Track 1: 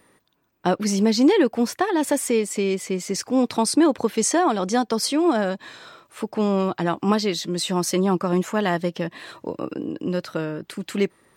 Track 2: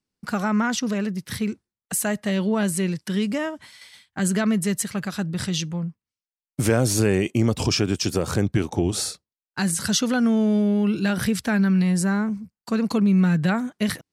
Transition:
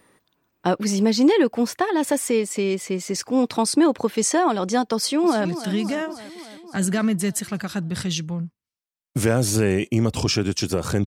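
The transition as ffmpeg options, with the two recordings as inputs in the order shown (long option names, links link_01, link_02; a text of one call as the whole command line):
ffmpeg -i cue0.wav -i cue1.wav -filter_complex "[0:a]apad=whole_dur=11.06,atrim=end=11.06,atrim=end=5.452[link_01];[1:a]atrim=start=2.878:end=8.49[link_02];[link_01][link_02]acrossfade=duration=0.004:curve1=hsin:curve2=hsin,asplit=2[link_03][link_04];[link_04]afade=type=in:start_time=4.95:duration=0.01,afade=type=out:start_time=5.45:duration=0.01,aecho=0:1:280|560|840|1120|1400|1680|1960|2240|2520:0.237137|0.165996|0.116197|0.0813381|0.0569367|0.0398557|0.027899|0.0195293|0.0136705[link_05];[link_03][link_05]amix=inputs=2:normalize=0" out.wav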